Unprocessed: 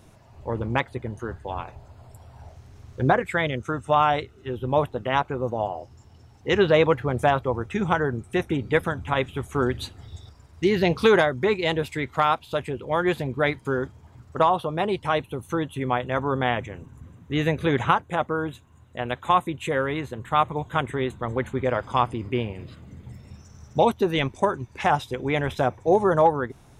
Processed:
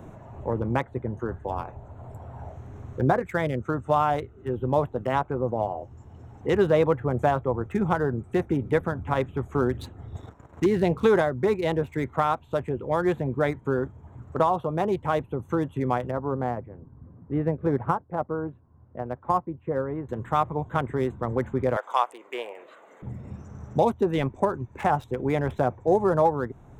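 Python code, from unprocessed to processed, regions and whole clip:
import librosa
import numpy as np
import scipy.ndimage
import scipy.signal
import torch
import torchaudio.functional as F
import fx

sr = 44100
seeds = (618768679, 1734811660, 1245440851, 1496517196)

y = fx.chain(x, sr, fx.low_shelf(hz=210.0, db=-8.5),
    fx.leveller(passes=2), at=(10.15, 10.66))
y = fx.chain(y, sr, fx.lowpass(hz=1200.0, slope=12),
    fx.upward_expand(threshold_db=-35.0, expansion=1.5), at=(16.11, 20.09))
y = fx.chain(y, sr, fx.highpass(hz=520.0, slope=24),
    fx.high_shelf(hz=2200.0, db=10.5), at=(21.76, 23.02))
y = fx.wiener(y, sr, points=9)
y = fx.peak_eq(y, sr, hz=2900.0, db=-9.5, octaves=1.7)
y = fx.band_squash(y, sr, depth_pct=40)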